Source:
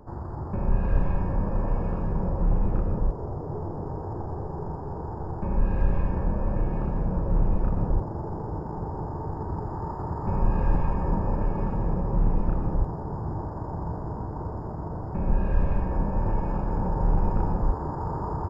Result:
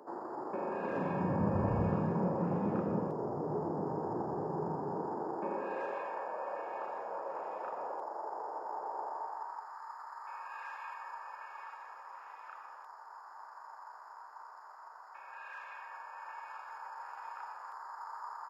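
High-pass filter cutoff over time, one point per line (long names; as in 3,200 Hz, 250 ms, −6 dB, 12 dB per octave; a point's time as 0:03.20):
high-pass filter 24 dB per octave
0:00.76 310 Hz
0:01.75 73 Hz
0:02.17 170 Hz
0:04.85 170 Hz
0:06.15 570 Hz
0:09.05 570 Hz
0:09.78 1,200 Hz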